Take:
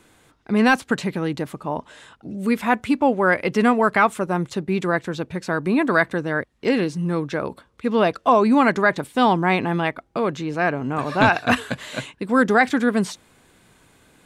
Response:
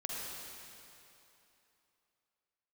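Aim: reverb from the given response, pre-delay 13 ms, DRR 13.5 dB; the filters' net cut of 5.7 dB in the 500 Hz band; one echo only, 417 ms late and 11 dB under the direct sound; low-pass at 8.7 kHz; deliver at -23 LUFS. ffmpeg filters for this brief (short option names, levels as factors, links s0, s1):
-filter_complex "[0:a]lowpass=8700,equalizer=f=500:t=o:g=-7.5,aecho=1:1:417:0.282,asplit=2[s0][s1];[1:a]atrim=start_sample=2205,adelay=13[s2];[s1][s2]afir=irnorm=-1:irlink=0,volume=0.168[s3];[s0][s3]amix=inputs=2:normalize=0,volume=0.944"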